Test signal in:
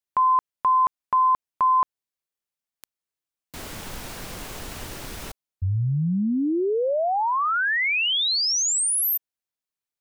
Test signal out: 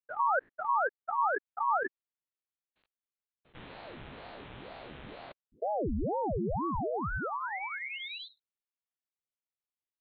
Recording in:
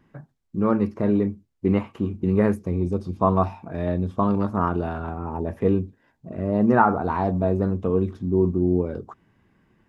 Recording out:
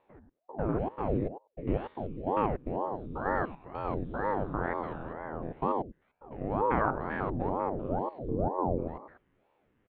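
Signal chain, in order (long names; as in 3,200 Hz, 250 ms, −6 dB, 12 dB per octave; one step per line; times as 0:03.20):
spectrum averaged block by block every 100 ms
downsampling to 8,000 Hz
ring modulator whose carrier an LFO sweeps 400 Hz, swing 85%, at 2.1 Hz
level −5.5 dB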